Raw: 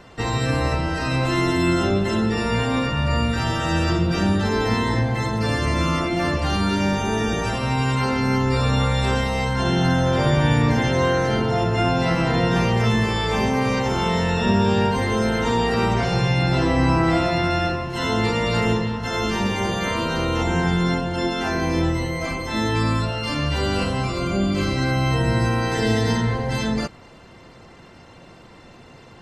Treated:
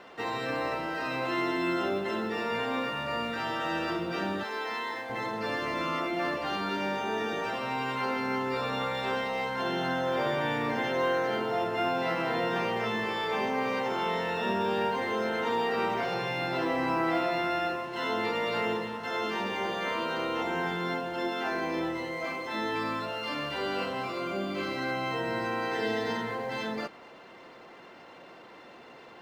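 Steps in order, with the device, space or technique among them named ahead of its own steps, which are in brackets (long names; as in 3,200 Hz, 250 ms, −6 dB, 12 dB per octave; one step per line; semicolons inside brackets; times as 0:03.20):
phone line with mismatched companding (band-pass filter 340–3,400 Hz; mu-law and A-law mismatch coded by mu)
0:04.43–0:05.10: high-pass filter 960 Hz 6 dB per octave
level −6.5 dB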